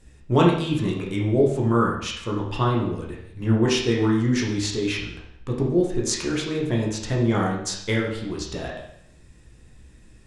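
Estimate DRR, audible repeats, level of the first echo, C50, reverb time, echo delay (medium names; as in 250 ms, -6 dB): -2.5 dB, no echo, no echo, 4.0 dB, 0.70 s, no echo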